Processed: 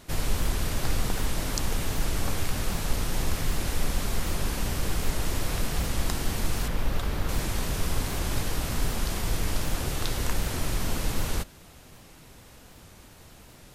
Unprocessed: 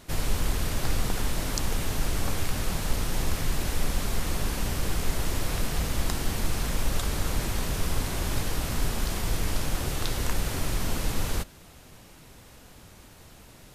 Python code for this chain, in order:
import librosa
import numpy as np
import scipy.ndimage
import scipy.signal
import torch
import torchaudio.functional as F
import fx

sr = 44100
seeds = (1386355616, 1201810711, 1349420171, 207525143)

y = fx.peak_eq(x, sr, hz=8400.0, db=-10.5, octaves=1.7, at=(6.68, 7.29))
y = fx.record_warp(y, sr, rpm=78.0, depth_cents=100.0)